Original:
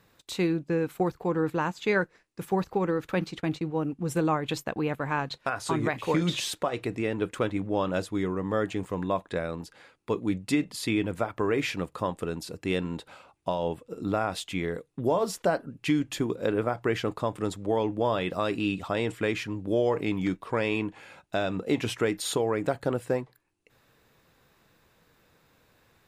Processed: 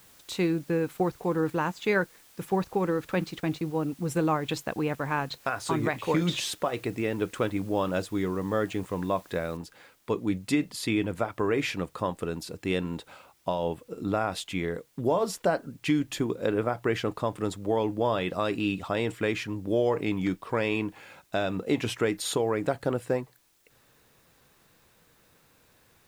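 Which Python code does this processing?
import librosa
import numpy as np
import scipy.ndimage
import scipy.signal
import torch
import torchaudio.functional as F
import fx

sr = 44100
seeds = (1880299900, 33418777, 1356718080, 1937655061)

y = fx.noise_floor_step(x, sr, seeds[0], at_s=9.57, before_db=-57, after_db=-67, tilt_db=0.0)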